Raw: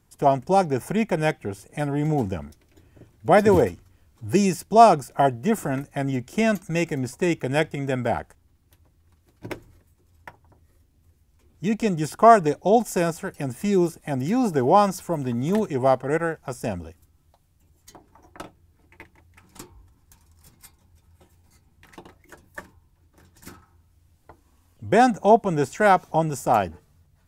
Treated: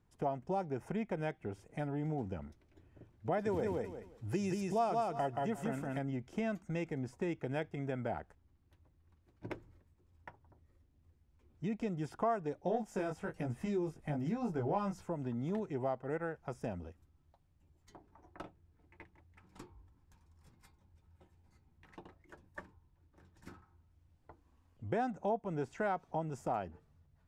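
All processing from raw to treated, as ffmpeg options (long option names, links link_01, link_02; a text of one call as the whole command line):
ffmpeg -i in.wav -filter_complex "[0:a]asettb=1/sr,asplit=3[link_01][link_02][link_03];[link_01]atrim=end=3.414[link_04];[link_02]atrim=start=3.41:end=5.99,asetpts=PTS-STARTPTS,afade=type=in:duration=0.004:curve=qsin,afade=type=out:start_time=2.576:duration=0.004:curve=qsin,highshelf=frequency=2900:gain=8,aecho=1:1:177|354|531:0.668|0.114|0.0193,atrim=end_sample=113778[link_05];[link_03]atrim=start=5.986[link_06];[link_04][link_05]acrossfade=duration=0.004:curve1=hsin:curve2=qsin[link_07];[link_07][link_06]acrossfade=duration=0.004:curve1=qsin:curve2=hsin,asettb=1/sr,asplit=3[link_08][link_09][link_10];[link_08]atrim=end=12.644[link_11];[link_09]atrim=start=12.64:end=15.06,asetpts=PTS-STARTPTS,afade=type=in:duration=0.004:curve=qsin,afade=type=out:start_time=2.416:duration=0.004:curve=qsin,asubboost=boost=3:cutoff=170,acontrast=30,flanger=delay=17:depth=3.5:speed=1.1[link_12];[link_10]atrim=start=15.056[link_13];[link_11][link_12]acrossfade=duration=0.004:curve1=hsin:curve2=qsin[link_14];[link_14][link_13]acrossfade=duration=0.004:curve1=qsin:curve2=hsin,aemphasis=mode=reproduction:type=75fm,acompressor=threshold=-27dB:ratio=2.5,volume=-9dB" out.wav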